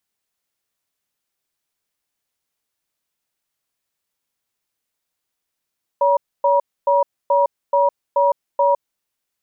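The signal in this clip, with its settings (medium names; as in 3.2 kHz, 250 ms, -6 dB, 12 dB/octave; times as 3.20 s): cadence 566 Hz, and 956 Hz, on 0.16 s, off 0.27 s, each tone -15 dBFS 2.97 s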